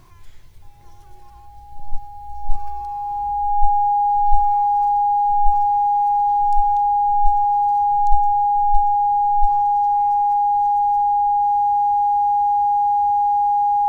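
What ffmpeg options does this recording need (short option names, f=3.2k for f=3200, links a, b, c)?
-af "bandreject=f=820:w=30"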